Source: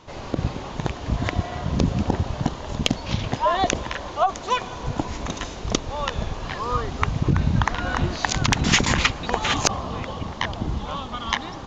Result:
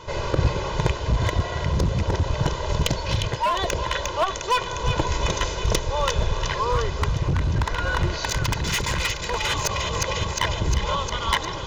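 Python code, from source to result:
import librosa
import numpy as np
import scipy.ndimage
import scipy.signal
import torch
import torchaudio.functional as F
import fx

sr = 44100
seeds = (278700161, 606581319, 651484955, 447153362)

y = x + 0.79 * np.pad(x, (int(2.0 * sr / 1000.0), 0))[:len(x)]
y = fx.echo_wet_highpass(y, sr, ms=355, feedback_pct=66, hz=1900.0, wet_db=-8.5)
y = np.clip(y, -10.0 ** (-16.0 / 20.0), 10.0 ** (-16.0 / 20.0))
y = fx.rider(y, sr, range_db=10, speed_s=0.5)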